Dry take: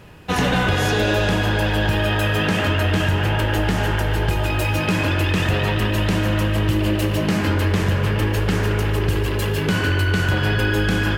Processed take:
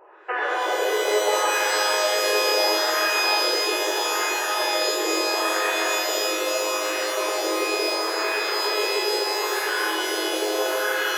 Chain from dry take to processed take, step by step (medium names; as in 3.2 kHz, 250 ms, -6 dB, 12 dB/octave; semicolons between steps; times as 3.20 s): LFO low-pass sine 0.75 Hz 440–1700 Hz; peak limiter -11.5 dBFS, peak gain reduction 6 dB; FFT band-pass 320–3100 Hz; on a send: flutter echo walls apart 8.5 m, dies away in 0.22 s; on the sum: pitch-shifted reverb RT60 3.7 s, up +12 st, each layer -2 dB, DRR 3 dB; trim -4.5 dB